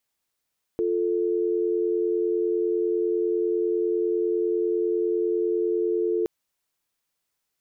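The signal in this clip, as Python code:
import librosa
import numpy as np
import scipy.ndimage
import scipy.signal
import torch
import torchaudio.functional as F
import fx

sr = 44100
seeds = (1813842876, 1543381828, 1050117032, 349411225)

y = fx.call_progress(sr, length_s=5.47, kind='dial tone', level_db=-24.0)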